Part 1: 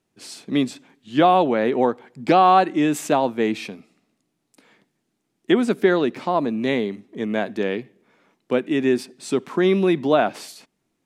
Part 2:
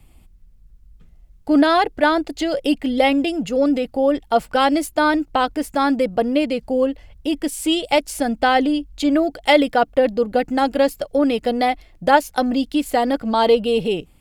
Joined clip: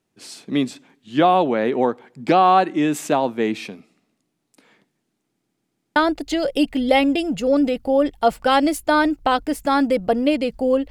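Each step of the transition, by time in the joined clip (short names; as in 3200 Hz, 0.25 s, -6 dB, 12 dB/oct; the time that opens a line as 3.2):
part 1
5.26 stutter in place 0.14 s, 5 plays
5.96 switch to part 2 from 2.05 s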